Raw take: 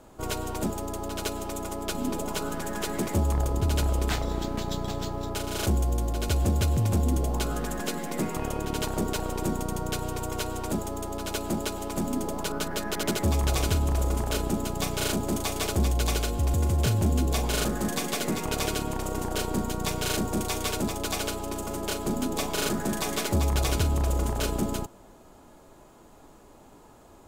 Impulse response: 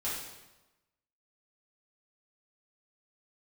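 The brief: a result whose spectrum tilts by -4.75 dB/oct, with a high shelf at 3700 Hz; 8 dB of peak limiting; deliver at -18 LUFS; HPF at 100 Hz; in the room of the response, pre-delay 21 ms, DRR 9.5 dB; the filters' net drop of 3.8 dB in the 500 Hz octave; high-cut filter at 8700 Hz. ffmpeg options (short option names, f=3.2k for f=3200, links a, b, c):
-filter_complex "[0:a]highpass=100,lowpass=8.7k,equalizer=f=500:t=o:g=-5,highshelf=f=3.7k:g=-4,alimiter=level_in=0.5dB:limit=-24dB:level=0:latency=1,volume=-0.5dB,asplit=2[a][b];[1:a]atrim=start_sample=2205,adelay=21[c];[b][c]afir=irnorm=-1:irlink=0,volume=-14dB[d];[a][d]amix=inputs=2:normalize=0,volume=16dB"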